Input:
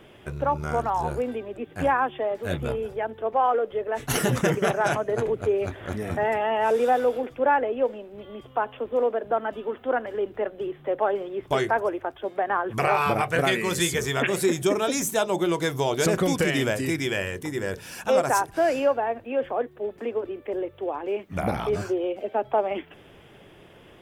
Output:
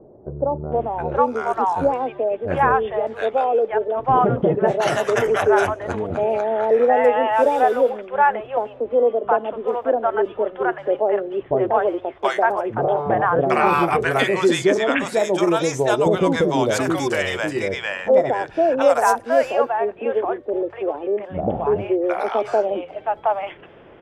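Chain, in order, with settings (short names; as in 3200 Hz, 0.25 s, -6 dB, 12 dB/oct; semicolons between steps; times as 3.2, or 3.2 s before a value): bell 680 Hz +9.5 dB 2.5 oct; low-pass opened by the level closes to 2100 Hz, open at -10.5 dBFS; bands offset in time lows, highs 0.72 s, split 700 Hz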